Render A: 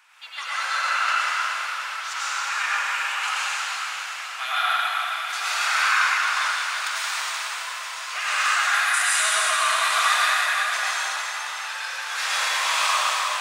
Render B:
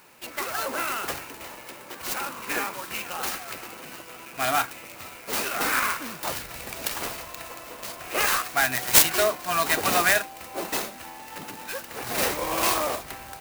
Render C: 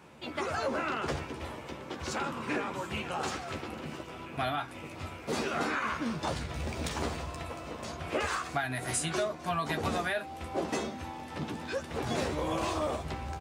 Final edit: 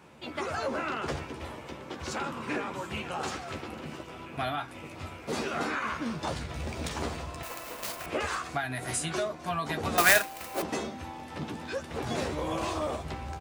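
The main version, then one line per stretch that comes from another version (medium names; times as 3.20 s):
C
7.43–8.06 s: from B
9.98–10.62 s: from B
not used: A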